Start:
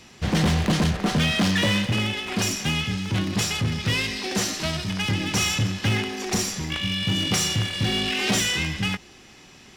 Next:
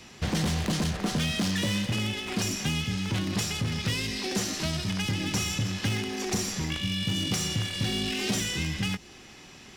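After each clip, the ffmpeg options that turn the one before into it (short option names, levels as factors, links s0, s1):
-filter_complex "[0:a]acrossover=split=400|4300[s0][s1][s2];[s0]acompressor=threshold=0.0447:ratio=4[s3];[s1]acompressor=threshold=0.0178:ratio=4[s4];[s2]acompressor=threshold=0.0224:ratio=4[s5];[s3][s4][s5]amix=inputs=3:normalize=0"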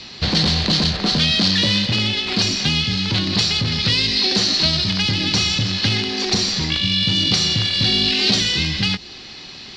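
-af "lowpass=f=4300:t=q:w=6.4,volume=2.24"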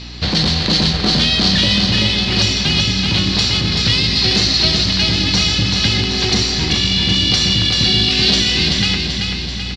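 -filter_complex "[0:a]aeval=exprs='val(0)+0.0224*(sin(2*PI*60*n/s)+sin(2*PI*2*60*n/s)/2+sin(2*PI*3*60*n/s)/3+sin(2*PI*4*60*n/s)/4+sin(2*PI*5*60*n/s)/5)':c=same,asplit=2[s0][s1];[s1]aecho=0:1:384|768|1152|1536|1920|2304|2688|3072:0.596|0.334|0.187|0.105|0.0586|0.0328|0.0184|0.0103[s2];[s0][s2]amix=inputs=2:normalize=0,volume=1.19"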